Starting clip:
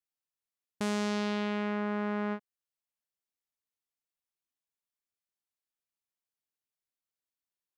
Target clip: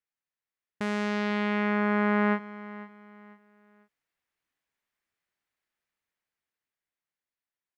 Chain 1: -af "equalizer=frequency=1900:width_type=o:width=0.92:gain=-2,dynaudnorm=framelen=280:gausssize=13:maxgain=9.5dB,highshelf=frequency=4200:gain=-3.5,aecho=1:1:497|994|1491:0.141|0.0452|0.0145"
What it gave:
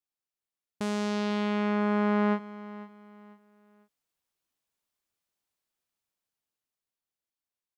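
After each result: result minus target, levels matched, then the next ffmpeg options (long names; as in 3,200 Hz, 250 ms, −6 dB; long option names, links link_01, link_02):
8,000 Hz band +6.0 dB; 2,000 Hz band −5.0 dB
-af "equalizer=frequency=1900:width_type=o:width=0.92:gain=-2,dynaudnorm=framelen=280:gausssize=13:maxgain=9.5dB,highshelf=frequency=4200:gain=-11,aecho=1:1:497|994|1491:0.141|0.0452|0.0145"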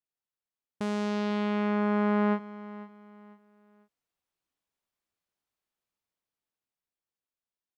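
2,000 Hz band −6.0 dB
-af "equalizer=frequency=1900:width_type=o:width=0.92:gain=7.5,dynaudnorm=framelen=280:gausssize=13:maxgain=9.5dB,highshelf=frequency=4200:gain=-11,aecho=1:1:497|994|1491:0.141|0.0452|0.0145"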